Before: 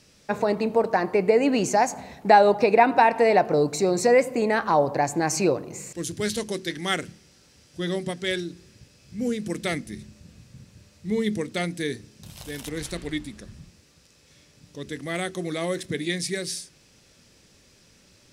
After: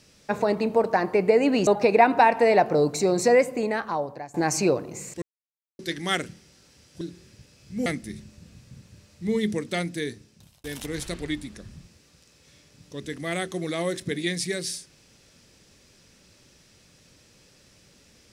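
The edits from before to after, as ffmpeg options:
-filter_complex "[0:a]asplit=8[s0][s1][s2][s3][s4][s5][s6][s7];[s0]atrim=end=1.672[s8];[s1]atrim=start=2.458:end=5.13,asetpts=PTS-STARTPTS,afade=t=out:st=1.652:d=1.02:silence=0.0841395[s9];[s2]atrim=start=5.13:end=6.01,asetpts=PTS-STARTPTS,afade=t=in:d=0.004:c=hsin:silence=0.0841395,afade=t=out:st=0.876:d=0.004:c=hsin[s10];[s3]atrim=start=6.01:end=6.58,asetpts=PTS-STARTPTS,volume=0[s11];[s4]atrim=start=6.58:end=7.802,asetpts=PTS-STARTPTS,afade=t=in:d=0.004:c=hsin[s12];[s5]atrim=start=8.428:end=9.282[s13];[s6]atrim=start=9.688:end=12.47,asetpts=PTS-STARTPTS,afade=t=out:st=1.792:d=0.99:c=qsin[s14];[s7]atrim=start=12.47,asetpts=PTS-STARTPTS,afade=t=in:d=0.004:c=hsin[s15];[s9][s10][s11][s12]concat=n=4:v=0:a=1[s16];[s8][s16]acrossfade=d=0.004:c1=hsin:c2=hsin[s17];[s17][s13]acrossfade=d=0.004:c1=hsin:c2=hsin[s18];[s14][s15]concat=n=2:v=0:a=1[s19];[s18][s19]acrossfade=d=0.004:c1=hsin:c2=hsin"

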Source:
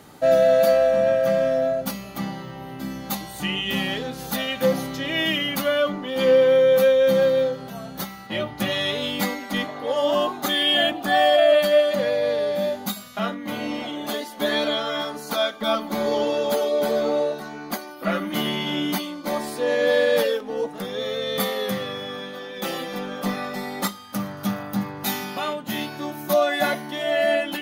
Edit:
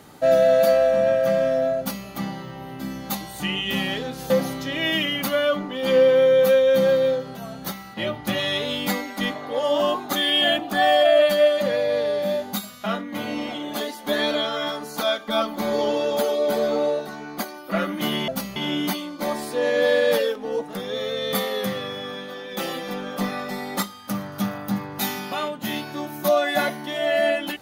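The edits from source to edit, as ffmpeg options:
-filter_complex "[0:a]asplit=4[s0][s1][s2][s3];[s0]atrim=end=4.302[s4];[s1]atrim=start=4.628:end=18.612[s5];[s2]atrim=start=1.778:end=2.062[s6];[s3]atrim=start=18.608[s7];[s4][s5]acrossfade=d=0.004:c1=hsin:c2=hsin[s8];[s8][s6]acrossfade=d=0.004:c1=hsin:c2=hsin[s9];[s9][s7]acrossfade=d=0.004:c1=hsin:c2=hsin"

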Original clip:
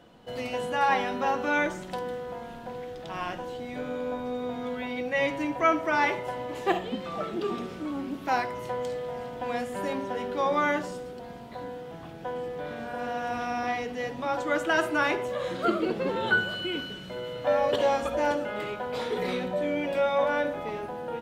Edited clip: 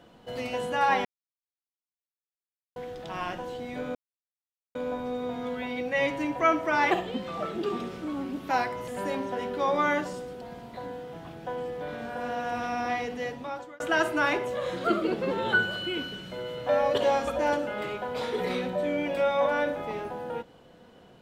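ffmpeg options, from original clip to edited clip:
-filter_complex "[0:a]asplit=7[s0][s1][s2][s3][s4][s5][s6];[s0]atrim=end=1.05,asetpts=PTS-STARTPTS,afade=t=out:st=1.046:d=0.004:c=hsin[s7];[s1]atrim=start=1.05:end=2.76,asetpts=PTS-STARTPTS,volume=0[s8];[s2]atrim=start=2.76:end=3.95,asetpts=PTS-STARTPTS,afade=t=in:d=0.004:c=hsin,afade=t=out:st=1.186:d=0.004:c=hsin,apad=pad_dur=0.8[s9];[s3]atrim=start=3.95:end=6.112,asetpts=PTS-STARTPTS,afade=t=in:d=0.004:c=hsin[s10];[s4]atrim=start=6.688:end=8.662[s11];[s5]atrim=start=9.658:end=14.58,asetpts=PTS-STARTPTS,afade=t=out:st=4.322:d=0.6[s12];[s6]atrim=start=14.58,asetpts=PTS-STARTPTS,afade=t=in:d=0.004:c=hsin[s13];[s7][s8][s9][s10]concat=n=4:v=0:a=1[s14];[s14][s11]acrossfade=d=0.004:c1=hsin:c2=hsin[s15];[s12][s13]concat=n=2:v=0:a=1[s16];[s15][s16]acrossfade=d=0.004:c1=hsin:c2=hsin"

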